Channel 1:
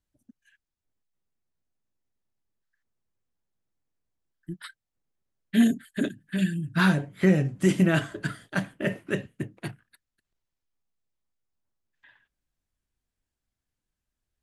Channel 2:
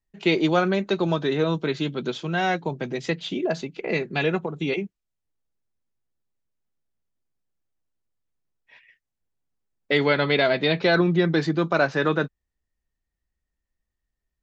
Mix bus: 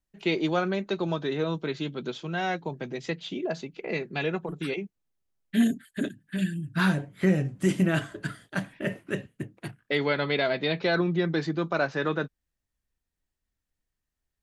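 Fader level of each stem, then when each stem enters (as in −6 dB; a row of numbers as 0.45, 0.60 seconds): −2.5, −5.5 decibels; 0.00, 0.00 seconds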